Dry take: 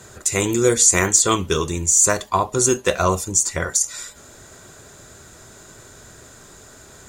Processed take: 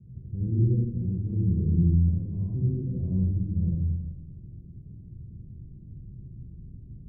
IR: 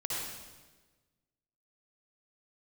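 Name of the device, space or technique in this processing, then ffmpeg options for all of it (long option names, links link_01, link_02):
club heard from the street: -filter_complex "[0:a]alimiter=limit=-12dB:level=0:latency=1:release=121,lowpass=frequency=200:width=0.5412,lowpass=frequency=200:width=1.3066[link_01];[1:a]atrim=start_sample=2205[link_02];[link_01][link_02]afir=irnorm=-1:irlink=0,volume=2.5dB"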